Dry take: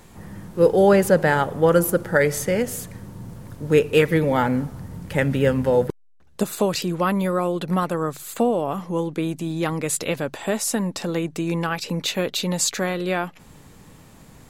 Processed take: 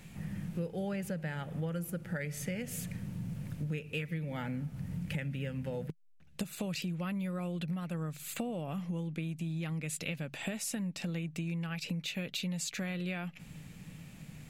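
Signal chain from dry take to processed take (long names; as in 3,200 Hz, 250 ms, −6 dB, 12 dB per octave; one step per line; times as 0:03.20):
graphic EQ with 15 bands 160 Hz +11 dB, 400 Hz −6 dB, 1,000 Hz −8 dB, 2,500 Hz +9 dB
downward compressor 12 to 1, threshold −27 dBFS, peak gain reduction 18.5 dB
level −6.5 dB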